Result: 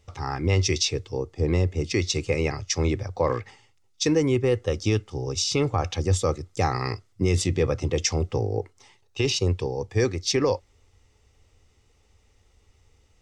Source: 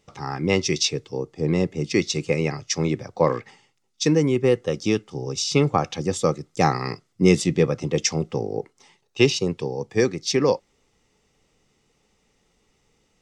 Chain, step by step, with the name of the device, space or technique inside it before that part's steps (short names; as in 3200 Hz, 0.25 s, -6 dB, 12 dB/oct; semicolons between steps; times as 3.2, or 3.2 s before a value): car stereo with a boomy subwoofer (resonant low shelf 120 Hz +9.5 dB, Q 3; limiter -12 dBFS, peak gain reduction 10.5 dB)